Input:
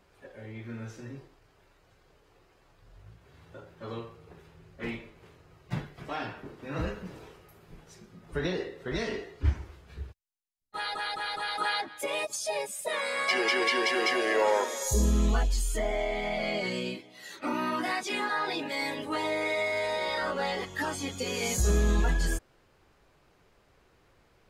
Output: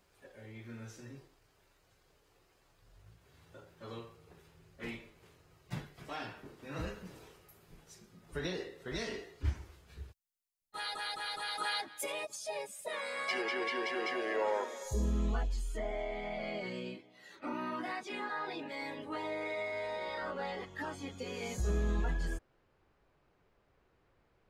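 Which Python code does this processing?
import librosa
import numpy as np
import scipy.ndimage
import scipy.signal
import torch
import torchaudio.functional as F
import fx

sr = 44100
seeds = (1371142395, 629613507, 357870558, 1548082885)

y = fx.high_shelf(x, sr, hz=4400.0, db=fx.steps((0.0, 10.0), (12.11, -3.0), (13.41, -12.0)))
y = F.gain(torch.from_numpy(y), -7.5).numpy()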